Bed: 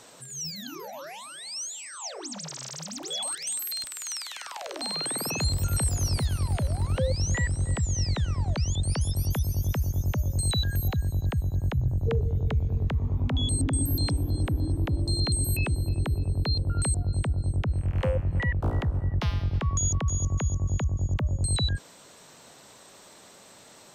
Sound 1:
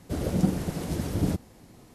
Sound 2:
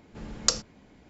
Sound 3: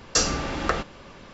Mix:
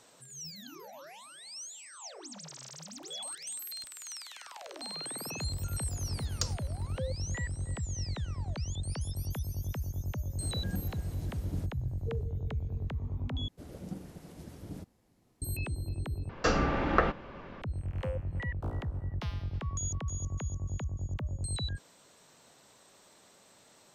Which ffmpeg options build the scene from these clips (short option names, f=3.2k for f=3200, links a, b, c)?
-filter_complex "[1:a]asplit=2[a][b];[0:a]volume=-9dB[c];[2:a]acontrast=51[d];[3:a]lowpass=2.1k[e];[c]asplit=3[f][g][h];[f]atrim=end=13.484[i];[b]atrim=end=1.94,asetpts=PTS-STARTPTS,volume=-17.5dB[j];[g]atrim=start=15.416:end=16.294[k];[e]atrim=end=1.33[l];[h]atrim=start=17.616[m];[d]atrim=end=1.09,asetpts=PTS-STARTPTS,volume=-15.5dB,afade=t=in:d=0.004:c=hsin,afade=t=out:st=1.086:d=0.004:c=hsin,adelay=261513S[n];[a]atrim=end=1.94,asetpts=PTS-STARTPTS,volume=-15.5dB,afade=t=in:d=0.004:c=hsin,afade=t=out:st=1.936:d=0.004:c=hsin,adelay=10300[o];[i][j]acrossfade=d=0.004:c1=hsin:c2=hsin[p];[p][k]acrossfade=d=0.004:c1=hsin:c2=hsin[q];[q][l]acrossfade=d=0.004:c1=hsin:c2=hsin[r];[r][m]acrossfade=d=0.004:c1=hsin:c2=hsin[s];[s][n][o]amix=inputs=3:normalize=0"